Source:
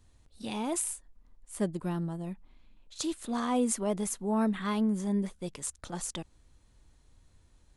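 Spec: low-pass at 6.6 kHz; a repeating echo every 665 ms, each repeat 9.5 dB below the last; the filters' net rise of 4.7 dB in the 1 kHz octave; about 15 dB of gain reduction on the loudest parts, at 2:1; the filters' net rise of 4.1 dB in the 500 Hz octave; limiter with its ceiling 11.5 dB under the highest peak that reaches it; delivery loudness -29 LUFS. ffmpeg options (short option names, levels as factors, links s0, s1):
-af "lowpass=6600,equalizer=f=500:t=o:g=4,equalizer=f=1000:t=o:g=4.5,acompressor=threshold=0.00316:ratio=2,alimiter=level_in=5.62:limit=0.0631:level=0:latency=1,volume=0.178,aecho=1:1:665|1330|1995|2660:0.335|0.111|0.0365|0.012,volume=10"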